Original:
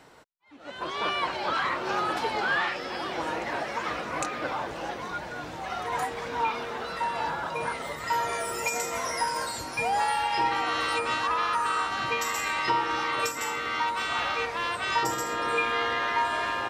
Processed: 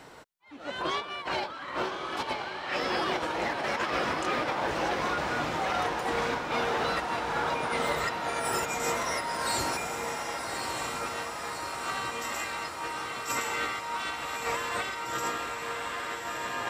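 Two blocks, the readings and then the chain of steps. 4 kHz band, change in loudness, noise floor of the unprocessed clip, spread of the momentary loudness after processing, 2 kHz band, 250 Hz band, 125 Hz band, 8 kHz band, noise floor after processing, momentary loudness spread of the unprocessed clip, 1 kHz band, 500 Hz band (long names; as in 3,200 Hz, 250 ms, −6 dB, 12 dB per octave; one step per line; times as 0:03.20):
−2.0 dB, −2.5 dB, −39 dBFS, 5 LU, −3.0 dB, +1.0 dB, +1.5 dB, −0.5 dB, −40 dBFS, 7 LU, −3.5 dB, 0.0 dB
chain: compressor whose output falls as the input rises −33 dBFS, ratio −0.5
on a send: feedback delay with all-pass diffusion 1,185 ms, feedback 68%, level −5 dB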